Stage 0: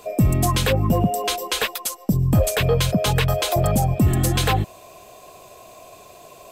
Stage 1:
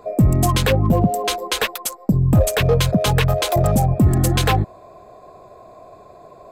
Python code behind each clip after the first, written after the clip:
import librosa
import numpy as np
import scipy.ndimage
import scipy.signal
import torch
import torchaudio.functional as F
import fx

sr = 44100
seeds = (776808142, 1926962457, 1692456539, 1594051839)

y = fx.wiener(x, sr, points=15)
y = y * 10.0 ** (3.0 / 20.0)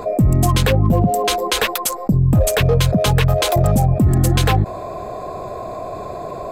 y = fx.low_shelf(x, sr, hz=210.0, db=3.5)
y = fx.env_flatten(y, sr, amount_pct=50)
y = y * 10.0 ** (-3.5 / 20.0)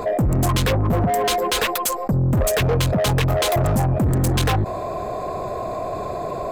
y = 10.0 ** (-17.5 / 20.0) * np.tanh(x / 10.0 ** (-17.5 / 20.0))
y = y * 10.0 ** (2.0 / 20.0)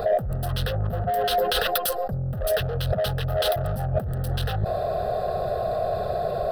y = fx.over_compress(x, sr, threshold_db=-21.0, ratio=-0.5)
y = fx.fixed_phaser(y, sr, hz=1500.0, stages=8)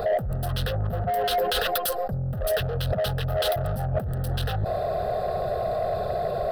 y = 10.0 ** (-16.5 / 20.0) * np.tanh(x / 10.0 ** (-16.5 / 20.0))